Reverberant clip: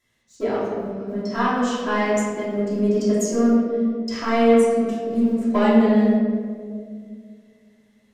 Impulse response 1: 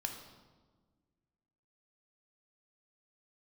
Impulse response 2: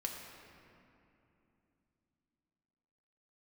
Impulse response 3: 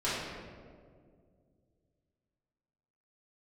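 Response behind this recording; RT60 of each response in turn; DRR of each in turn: 3; 1.5, 2.9, 2.1 seconds; 3.5, 0.0, −12.0 decibels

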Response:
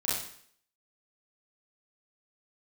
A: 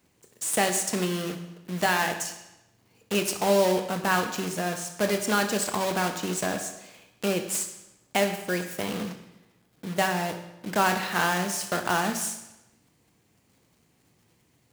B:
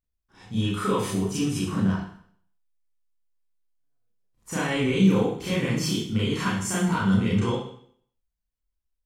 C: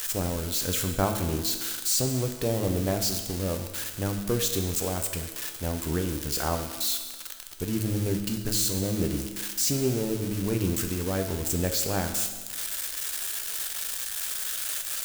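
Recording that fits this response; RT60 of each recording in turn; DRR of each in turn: B; 0.95, 0.60, 1.4 seconds; 6.0, −9.0, 5.0 decibels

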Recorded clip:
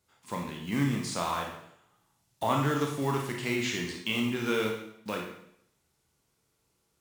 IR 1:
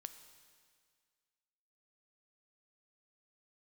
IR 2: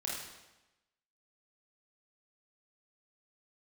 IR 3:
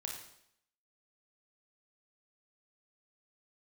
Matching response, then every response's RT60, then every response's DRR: 3; 1.9, 1.0, 0.70 seconds; 9.5, −4.5, 0.0 decibels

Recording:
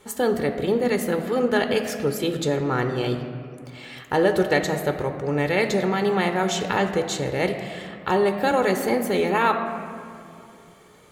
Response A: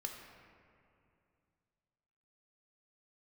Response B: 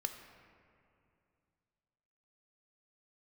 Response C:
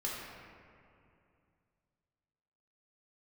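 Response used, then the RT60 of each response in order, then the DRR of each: B; 2.5, 2.5, 2.5 seconds; 2.0, 6.0, −5.0 decibels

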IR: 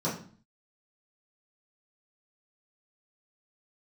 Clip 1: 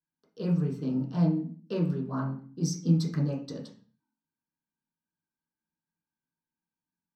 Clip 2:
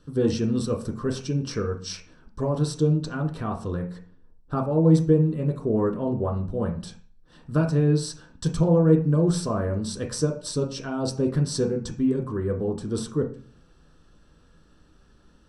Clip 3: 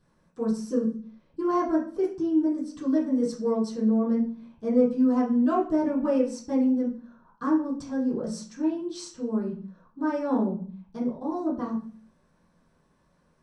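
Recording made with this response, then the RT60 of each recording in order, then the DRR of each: 3; 0.45, 0.45, 0.45 seconds; −4.5, 1.5, −10.0 decibels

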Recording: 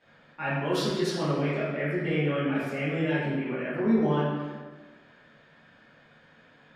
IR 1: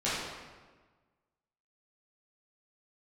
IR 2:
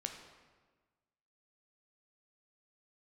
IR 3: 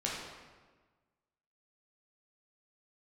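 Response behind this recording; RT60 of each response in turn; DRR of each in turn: 1; 1.4, 1.4, 1.4 seconds; −11.5, 3.5, −5.5 decibels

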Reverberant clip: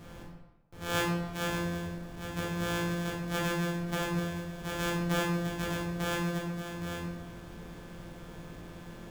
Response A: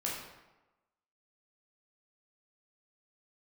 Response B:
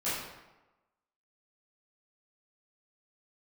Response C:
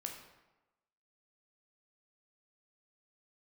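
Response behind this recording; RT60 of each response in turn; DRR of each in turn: A; 1.1, 1.1, 1.1 seconds; −4.5, −13.0, 2.0 decibels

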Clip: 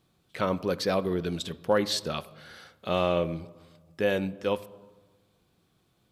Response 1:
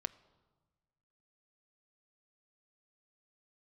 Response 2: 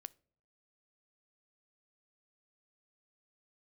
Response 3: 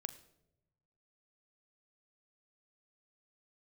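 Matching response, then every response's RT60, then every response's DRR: 1; 1.3, 0.60, 0.90 seconds; 14.0, 18.5, 10.5 decibels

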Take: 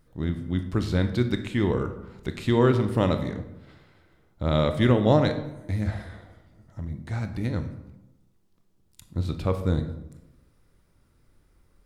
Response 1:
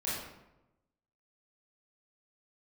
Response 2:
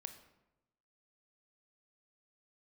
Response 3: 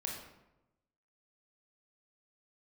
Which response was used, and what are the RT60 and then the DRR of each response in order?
2; 0.95, 0.95, 0.95 seconds; −9.0, 7.5, −1.0 decibels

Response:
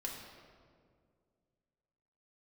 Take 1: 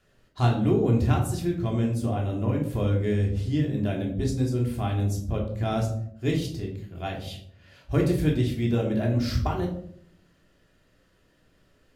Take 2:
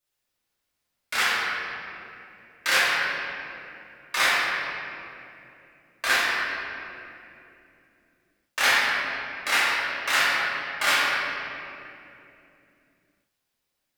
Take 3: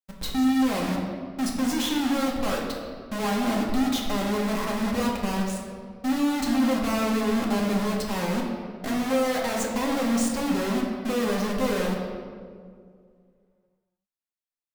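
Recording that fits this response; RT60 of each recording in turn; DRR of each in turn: 3; 0.65, 2.8, 2.1 seconds; −1.0, −10.5, −2.5 decibels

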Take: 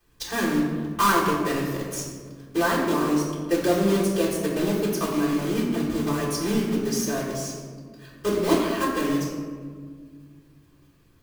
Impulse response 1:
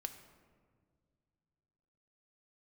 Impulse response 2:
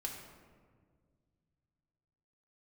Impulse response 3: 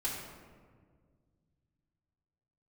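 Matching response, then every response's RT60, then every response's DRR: 3; 2.0, 1.8, 1.8 seconds; 6.5, −2.0, −10.0 decibels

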